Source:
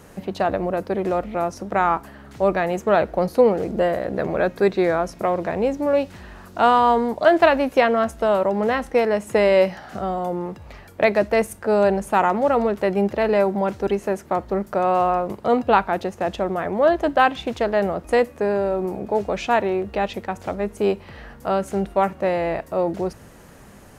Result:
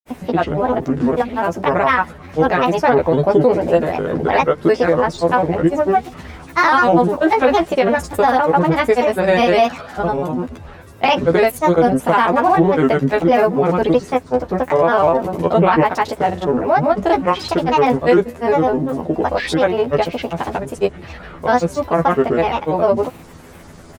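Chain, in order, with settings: granulator, grains 20 per s, pitch spread up and down by 7 st; doubling 12 ms -3 dB; loudness maximiser +8.5 dB; trim -3 dB

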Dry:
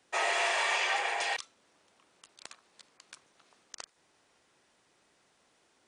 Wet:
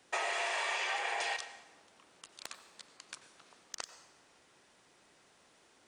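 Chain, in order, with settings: compression 6:1, threshold -36 dBFS, peak gain reduction 10 dB; hard clipper -24 dBFS, distortion -32 dB; plate-style reverb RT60 1.1 s, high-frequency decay 0.75×, pre-delay 80 ms, DRR 11.5 dB; trim +3.5 dB

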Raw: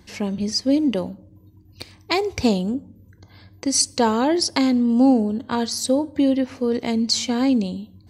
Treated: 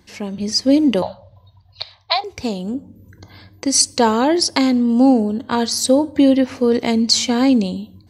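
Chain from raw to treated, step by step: 1.02–2.24 s: FFT filter 120 Hz 0 dB, 330 Hz -28 dB, 630 Hz +11 dB, 2.6 kHz +3 dB, 3.9 kHz +15 dB, 7.9 kHz -16 dB; level rider gain up to 11.5 dB; bass shelf 200 Hz -4 dB; trim -1 dB

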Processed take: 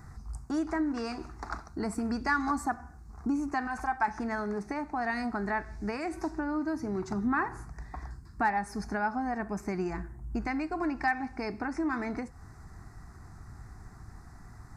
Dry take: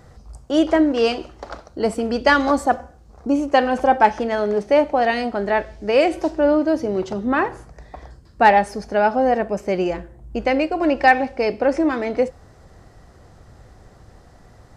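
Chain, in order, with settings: 3.67–4.08 s: peaking EQ 270 Hz -11.5 dB 1.7 oct; compression 3:1, threshold -24 dBFS, peak gain reduction 12 dB; static phaser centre 1.3 kHz, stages 4

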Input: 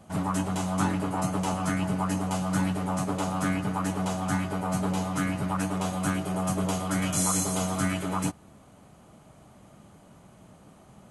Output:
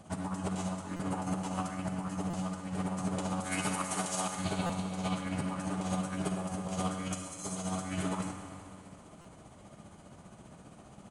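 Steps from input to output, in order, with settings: 3.40–4.36 s: RIAA curve recording; 4.39–5.15 s: spectral replace 2.2–4.7 kHz; treble shelf 7 kHz +3.5 dB; compressor with a negative ratio -31 dBFS, ratio -0.5; tremolo 15 Hz, depth 55%; Schroeder reverb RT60 2.6 s, combs from 32 ms, DRR 6 dB; resampled via 22.05 kHz; speakerphone echo 100 ms, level -10 dB; buffer glitch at 0.96/2.30/4.66/9.21 s, samples 256, times 5; trim -2.5 dB

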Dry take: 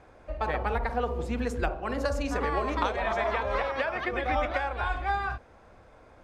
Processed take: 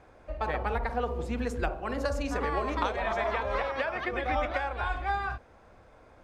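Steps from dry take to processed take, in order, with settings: 1.39–3.50 s: added noise brown -57 dBFS; trim -1.5 dB

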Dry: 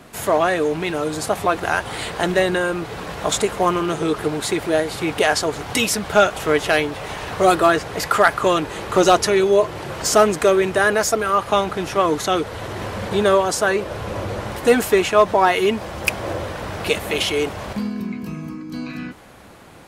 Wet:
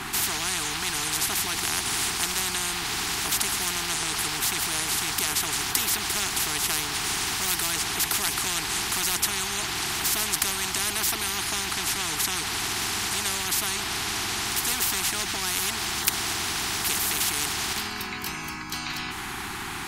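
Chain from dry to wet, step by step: elliptic band-stop 380–790 Hz, stop band 50 dB; spectrum-flattening compressor 10:1

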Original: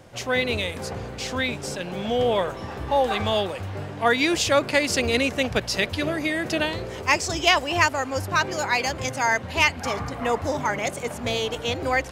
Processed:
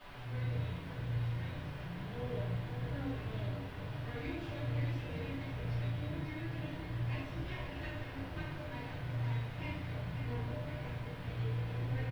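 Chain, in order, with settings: comb filter that takes the minimum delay 6.5 ms; high-pass 68 Hz 24 dB/octave; amplifier tone stack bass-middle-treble 10-0-1; feedback comb 120 Hz, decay 0.73 s, harmonics all, mix 80%; in parallel at -7 dB: word length cut 8-bit, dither triangular; on the sum: distance through air 480 m; on a send: delay 539 ms -8.5 dB; on the sum: simulated room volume 110 m³, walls mixed, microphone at 4.1 m; trim +1 dB

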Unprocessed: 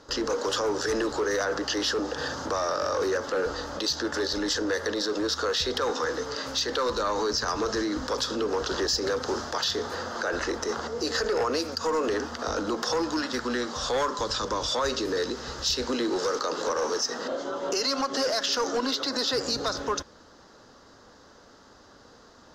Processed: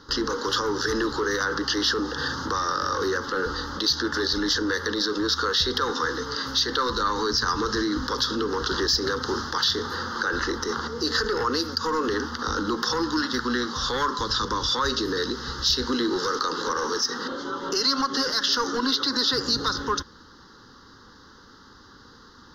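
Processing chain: static phaser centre 2.4 kHz, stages 6; trim +6 dB

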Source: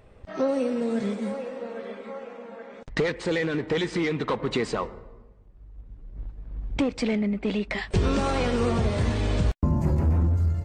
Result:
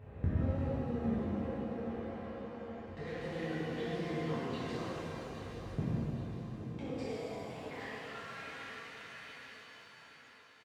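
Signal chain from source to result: local Wiener filter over 9 samples; gate with hold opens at -36 dBFS; tone controls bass +4 dB, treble -3 dB; peak limiter -22.5 dBFS, peak gain reduction 13 dB; inverted gate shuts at -39 dBFS, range -36 dB; high-pass sweep 82 Hz -> 1.7 kHz, 5.37–8.32 s; feedback delay 816 ms, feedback 44%, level -10 dB; pitch-shifted reverb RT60 3 s, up +7 st, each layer -8 dB, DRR -11 dB; trim +15 dB

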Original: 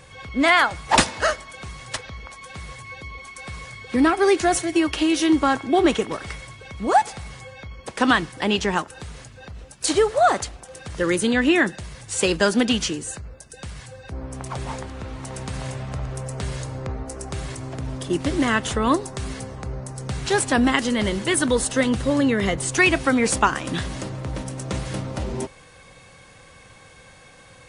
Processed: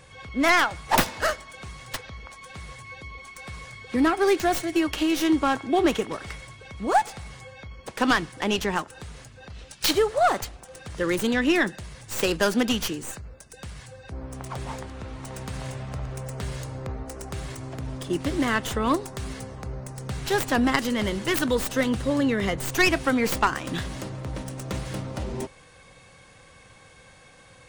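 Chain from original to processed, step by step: tracing distortion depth 0.2 ms; 9.50–9.91 s: peaking EQ 3.7 kHz +10 dB 2.1 oct; trim -3.5 dB

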